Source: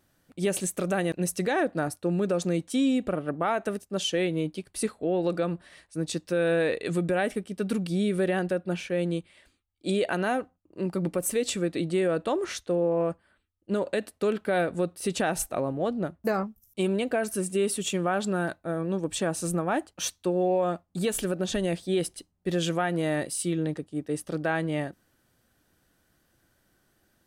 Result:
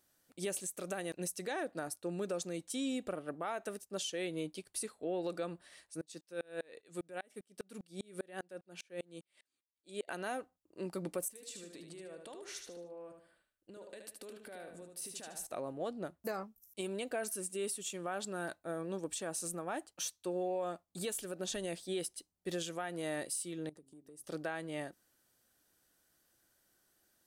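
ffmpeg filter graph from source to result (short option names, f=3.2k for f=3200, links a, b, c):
-filter_complex "[0:a]asettb=1/sr,asplit=3[a][b][c];[a]atrim=end=6.014[d];[b]atrim=start=6.01:end=10.08,asetpts=PTS-STARTPTS,afade=t=in:d=0.004:c=qsin,afade=t=out:st=4.066:d=0.004:c=qsin,highpass=120,aeval=exprs='val(0)*pow(10,-34*if(lt(mod(-5*n/s,1),2*abs(-5)/1000),1-mod(-5*n/s,1)/(2*abs(-5)/1000),(mod(-5*n/s,1)-2*abs(-5)/1000)/(1-2*abs(-5)/1000))/20)':c=same[e];[c]atrim=start=10.076[f];[d][e]acrossfade=d=0.004:c1=hsin:c2=qsin[g];[g][f]acrossfade=d=0.004:c1=qsin:c2=hsin,asettb=1/sr,asplit=3[h][i][j];[h]atrim=end=11.284[k];[i]atrim=start=11.28:end=15.47,asetpts=PTS-STARTPTS,afade=t=in:d=0.004:c=qsin,afade=t=out:st=4.186:d=0.004:c=qsin,bandreject=f=1.3k:w=17,acompressor=threshold=-38dB:ratio=10:attack=3.2:release=140:knee=1:detection=peak,aecho=1:1:75|150|225|300:0.501|0.18|0.065|0.0234,atrim=end_sample=184779[l];[j]atrim=start=15.466[m];[k][l]acrossfade=d=0.004:c1=hsin:c2=qsin[n];[n][m]acrossfade=d=0.004:c1=qsin:c2=hsin,asettb=1/sr,asplit=3[o][p][q];[o]atrim=end=23.694[r];[p]atrim=start=23.69:end=24.24,asetpts=PTS-STARTPTS,afade=t=in:d=0.004:c=qsin,afade=t=out:st=0.546:d=0.004:c=qsin,equalizer=f=2.5k:t=o:w=2.6:g=-10.5,bandreject=f=134.2:t=h:w=4,bandreject=f=268.4:t=h:w=4,bandreject=f=402.6:t=h:w=4,acompressor=threshold=-42dB:ratio=10:attack=3.2:release=140:knee=1:detection=peak[s];[q]atrim=start=24.236[t];[r][s]acrossfade=d=0.004:c1=hsin:c2=qsin[u];[u][t]acrossfade=d=0.004:c1=qsin:c2=hsin,bass=f=250:g=-8,treble=f=4k:g=8,alimiter=limit=-20dB:level=0:latency=1:release=336,volume=-8dB"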